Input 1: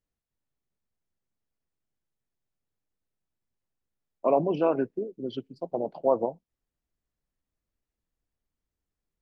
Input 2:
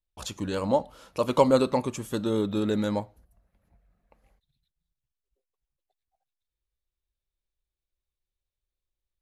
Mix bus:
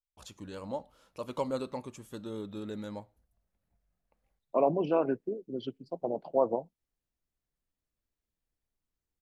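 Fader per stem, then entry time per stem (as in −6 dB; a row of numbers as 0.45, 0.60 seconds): −3.0, −13.0 decibels; 0.30, 0.00 seconds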